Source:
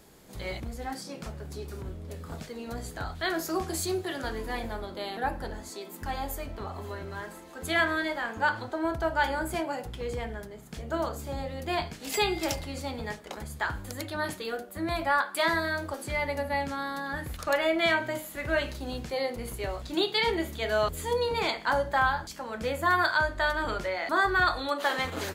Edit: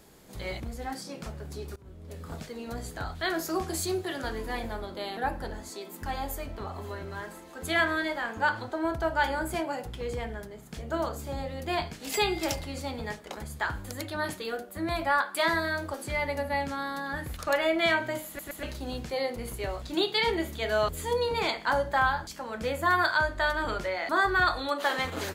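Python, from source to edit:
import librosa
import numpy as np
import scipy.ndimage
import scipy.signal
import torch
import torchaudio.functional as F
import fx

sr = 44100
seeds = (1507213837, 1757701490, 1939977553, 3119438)

y = fx.edit(x, sr, fx.fade_in_from(start_s=1.76, length_s=0.49, floor_db=-23.0),
    fx.stutter_over(start_s=18.27, slice_s=0.12, count=3), tone=tone)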